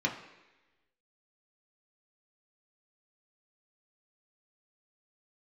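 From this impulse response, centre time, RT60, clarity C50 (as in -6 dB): 22 ms, 1.1 s, 8.5 dB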